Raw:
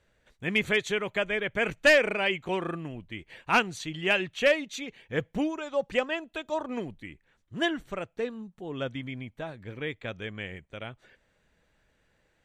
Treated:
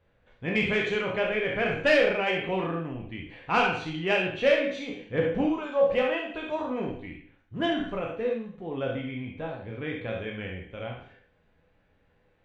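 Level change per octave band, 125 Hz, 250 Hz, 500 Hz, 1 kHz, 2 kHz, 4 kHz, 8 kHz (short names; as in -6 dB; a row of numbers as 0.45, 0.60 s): +3.5 dB, +3.0 dB, +3.0 dB, +2.5 dB, -1.0 dB, -1.5 dB, n/a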